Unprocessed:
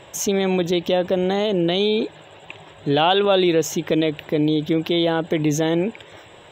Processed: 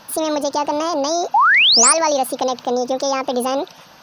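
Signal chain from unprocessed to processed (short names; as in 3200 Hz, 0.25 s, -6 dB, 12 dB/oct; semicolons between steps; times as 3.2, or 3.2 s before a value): painted sound rise, 2.17–3.12, 480–6200 Hz -12 dBFS; wide varispeed 1.62×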